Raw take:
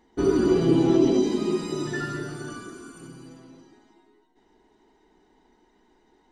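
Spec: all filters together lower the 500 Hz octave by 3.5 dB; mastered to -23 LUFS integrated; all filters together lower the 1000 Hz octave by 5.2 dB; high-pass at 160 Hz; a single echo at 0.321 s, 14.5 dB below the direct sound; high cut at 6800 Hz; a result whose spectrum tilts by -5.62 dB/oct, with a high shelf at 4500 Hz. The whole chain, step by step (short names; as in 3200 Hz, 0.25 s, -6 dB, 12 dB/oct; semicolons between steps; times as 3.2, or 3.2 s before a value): HPF 160 Hz; LPF 6800 Hz; bell 500 Hz -4.5 dB; bell 1000 Hz -6.5 dB; high shelf 4500 Hz +6.5 dB; echo 0.321 s -14.5 dB; gain +3 dB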